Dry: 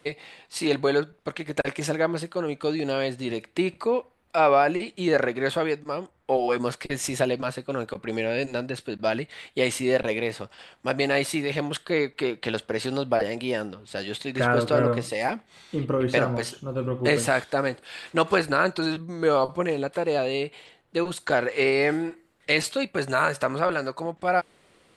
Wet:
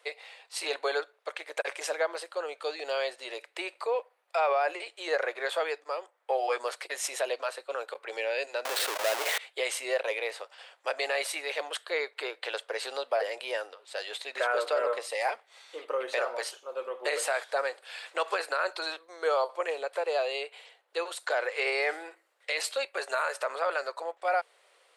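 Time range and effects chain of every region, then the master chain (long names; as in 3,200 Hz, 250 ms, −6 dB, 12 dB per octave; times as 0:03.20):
0:08.65–0:09.38: each half-wave held at its own peak + envelope flattener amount 100%
whole clip: Butterworth high-pass 480 Hz 36 dB per octave; brickwall limiter −16 dBFS; level −2.5 dB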